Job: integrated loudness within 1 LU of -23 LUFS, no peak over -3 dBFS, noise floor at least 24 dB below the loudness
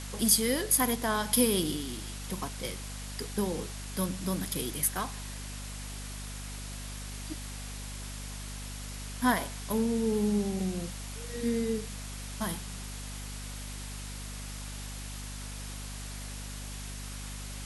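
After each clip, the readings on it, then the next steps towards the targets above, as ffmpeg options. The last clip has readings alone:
hum 50 Hz; harmonics up to 250 Hz; hum level -39 dBFS; noise floor -40 dBFS; noise floor target -57 dBFS; loudness -33.0 LUFS; peak -9.0 dBFS; loudness target -23.0 LUFS
-> -af "bandreject=f=50:t=h:w=6,bandreject=f=100:t=h:w=6,bandreject=f=150:t=h:w=6,bandreject=f=200:t=h:w=6,bandreject=f=250:t=h:w=6"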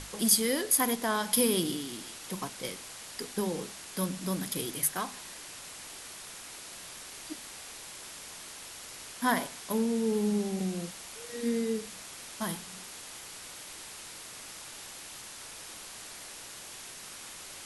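hum none; noise floor -46 dBFS; noise floor target -58 dBFS
-> -af "afftdn=nr=12:nf=-46"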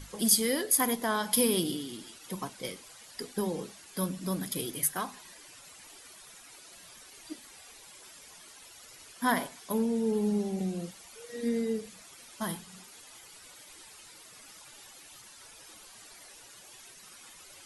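noise floor -53 dBFS; noise floor target -55 dBFS
-> -af "afftdn=nr=6:nf=-53"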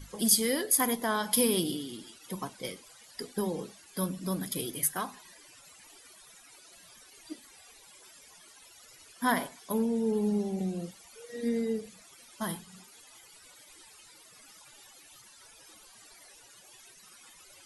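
noise floor -56 dBFS; loudness -30.5 LUFS; peak -8.5 dBFS; loudness target -23.0 LUFS
-> -af "volume=7.5dB,alimiter=limit=-3dB:level=0:latency=1"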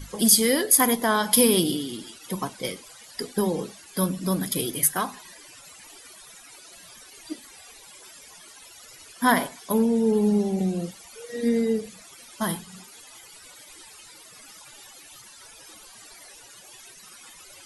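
loudness -23.0 LUFS; peak -3.0 dBFS; noise floor -48 dBFS

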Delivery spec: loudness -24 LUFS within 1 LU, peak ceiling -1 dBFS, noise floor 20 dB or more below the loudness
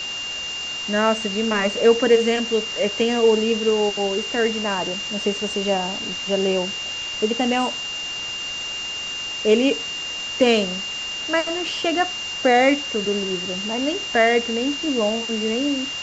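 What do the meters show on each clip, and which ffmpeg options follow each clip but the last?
steady tone 2800 Hz; tone level -27 dBFS; noise floor -29 dBFS; noise floor target -41 dBFS; loudness -21.0 LUFS; peak -4.5 dBFS; loudness target -24.0 LUFS
-> -af "bandreject=f=2.8k:w=30"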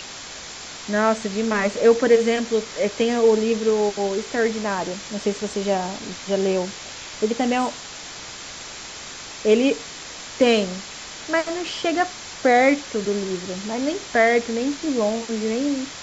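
steady tone none; noise floor -37 dBFS; noise floor target -42 dBFS
-> -af "afftdn=nr=6:nf=-37"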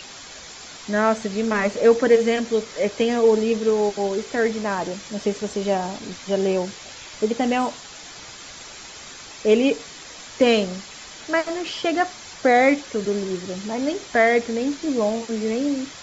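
noise floor -40 dBFS; noise floor target -42 dBFS
-> -af "afftdn=nr=6:nf=-40"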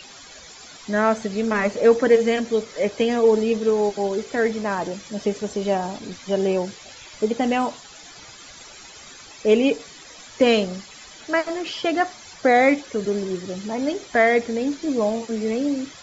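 noise floor -44 dBFS; loudness -22.0 LUFS; peak -5.0 dBFS; loudness target -24.0 LUFS
-> -af "volume=-2dB"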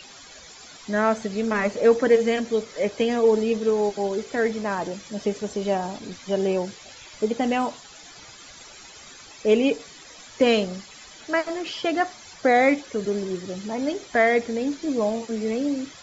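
loudness -24.0 LUFS; peak -7.0 dBFS; noise floor -46 dBFS

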